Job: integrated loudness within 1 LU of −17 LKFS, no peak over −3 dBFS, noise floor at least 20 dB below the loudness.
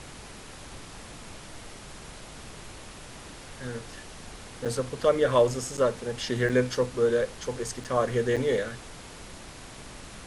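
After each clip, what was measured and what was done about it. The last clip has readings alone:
number of dropouts 5; longest dropout 6.9 ms; background noise floor −45 dBFS; target noise floor −48 dBFS; integrated loudness −27.5 LKFS; sample peak −10.0 dBFS; target loudness −17.0 LKFS
→ repair the gap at 0:04.65/0:05.77/0:06.49/0:07.84/0:08.36, 6.9 ms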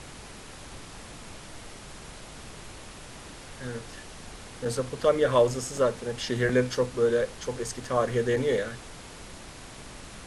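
number of dropouts 0; background noise floor −45 dBFS; target noise floor −47 dBFS
→ noise reduction from a noise print 6 dB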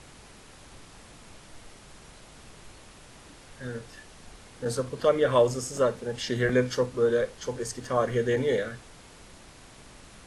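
background noise floor −51 dBFS; integrated loudness −27.0 LKFS; sample peak −10.0 dBFS; target loudness −17.0 LKFS
→ level +10 dB
brickwall limiter −3 dBFS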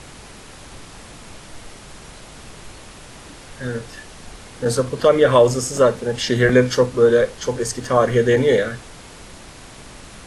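integrated loudness −17.5 LKFS; sample peak −3.0 dBFS; background noise floor −41 dBFS

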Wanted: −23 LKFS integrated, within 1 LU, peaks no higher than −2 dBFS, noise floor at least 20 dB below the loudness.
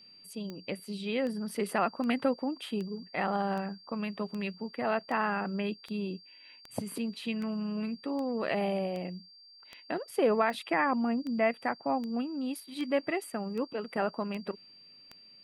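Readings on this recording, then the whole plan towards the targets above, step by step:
number of clicks 20; interfering tone 4,700 Hz; level of the tone −53 dBFS; integrated loudness −33.0 LKFS; sample peak −15.0 dBFS; target loudness −23.0 LKFS
→ click removal
notch filter 4,700 Hz, Q 30
level +10 dB

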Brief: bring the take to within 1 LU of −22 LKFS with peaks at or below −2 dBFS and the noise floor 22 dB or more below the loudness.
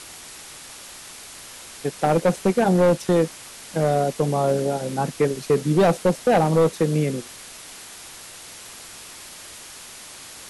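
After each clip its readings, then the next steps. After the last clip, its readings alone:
share of clipped samples 1.6%; peaks flattened at −12.0 dBFS; background noise floor −41 dBFS; target noise floor −44 dBFS; integrated loudness −21.5 LKFS; sample peak −12.0 dBFS; target loudness −22.0 LKFS
→ clipped peaks rebuilt −12 dBFS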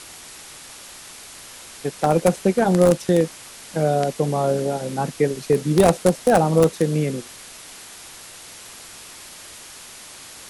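share of clipped samples 0.0%; background noise floor −41 dBFS; target noise floor −42 dBFS
→ broadband denoise 6 dB, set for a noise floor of −41 dBFS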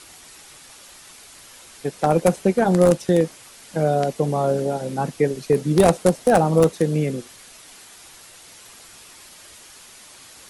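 background noise floor −46 dBFS; integrated loudness −20.0 LKFS; sample peak −3.0 dBFS; target loudness −22.0 LKFS
→ level −2 dB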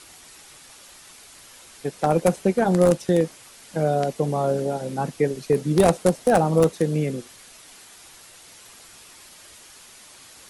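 integrated loudness −22.0 LKFS; sample peak −5.0 dBFS; background noise floor −48 dBFS

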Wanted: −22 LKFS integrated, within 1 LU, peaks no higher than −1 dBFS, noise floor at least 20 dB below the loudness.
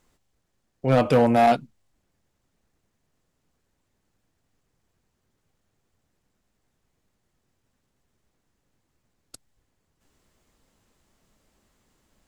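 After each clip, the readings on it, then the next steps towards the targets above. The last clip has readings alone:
share of clipped samples 0.4%; peaks flattened at −12.0 dBFS; integrated loudness −20.5 LKFS; sample peak −12.0 dBFS; target loudness −22.0 LKFS
→ clipped peaks rebuilt −12 dBFS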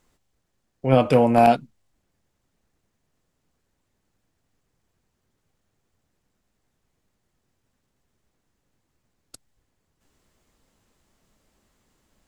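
share of clipped samples 0.0%; integrated loudness −19.0 LKFS; sample peak −3.0 dBFS; target loudness −22.0 LKFS
→ level −3 dB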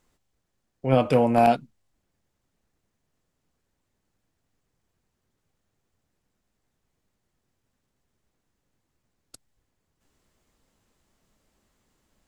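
integrated loudness −21.5 LKFS; sample peak −6.0 dBFS; background noise floor −78 dBFS

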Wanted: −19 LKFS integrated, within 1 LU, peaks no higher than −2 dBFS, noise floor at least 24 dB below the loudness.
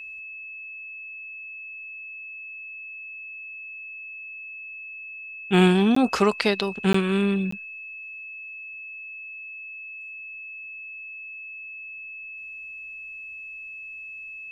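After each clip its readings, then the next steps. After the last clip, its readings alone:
number of dropouts 3; longest dropout 14 ms; interfering tone 2,600 Hz; level of the tone −36 dBFS; integrated loudness −28.5 LKFS; sample peak −5.0 dBFS; target loudness −19.0 LKFS
→ repair the gap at 0:05.95/0:06.93/0:07.51, 14 ms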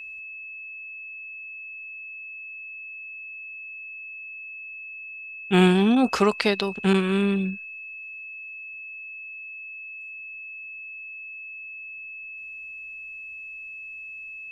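number of dropouts 0; interfering tone 2,600 Hz; level of the tone −36 dBFS
→ notch filter 2,600 Hz, Q 30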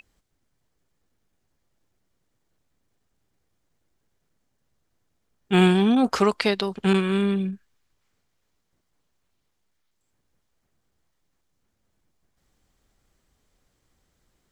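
interfering tone none found; integrated loudness −21.5 LKFS; sample peak −5.0 dBFS; target loudness −19.0 LKFS
→ level +2.5 dB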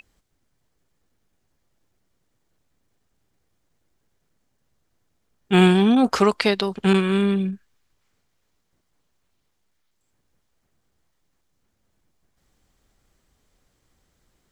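integrated loudness −19.0 LKFS; sample peak −2.5 dBFS; background noise floor −72 dBFS

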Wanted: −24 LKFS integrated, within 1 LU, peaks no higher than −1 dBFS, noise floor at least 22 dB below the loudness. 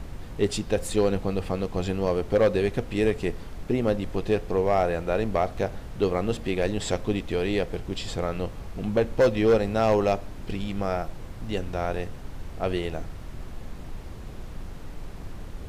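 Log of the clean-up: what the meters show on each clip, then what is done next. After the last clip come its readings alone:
share of clipped samples 0.5%; peaks flattened at −14.0 dBFS; background noise floor −39 dBFS; target noise floor −49 dBFS; integrated loudness −26.5 LKFS; sample peak −14.0 dBFS; target loudness −24.0 LKFS
→ clipped peaks rebuilt −14 dBFS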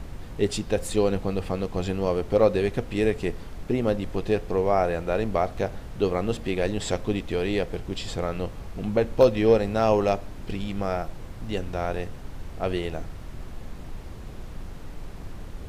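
share of clipped samples 0.0%; background noise floor −39 dBFS; target noise floor −48 dBFS
→ noise reduction from a noise print 9 dB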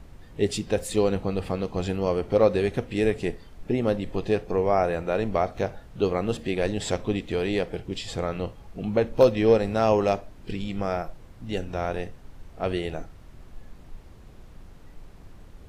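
background noise floor −48 dBFS; integrated loudness −26.0 LKFS; sample peak −5.5 dBFS; target loudness −24.0 LKFS
→ level +2 dB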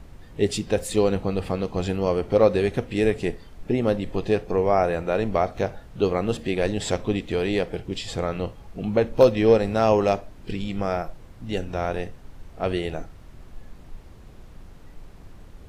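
integrated loudness −24.0 LKFS; sample peak −3.5 dBFS; background noise floor −46 dBFS

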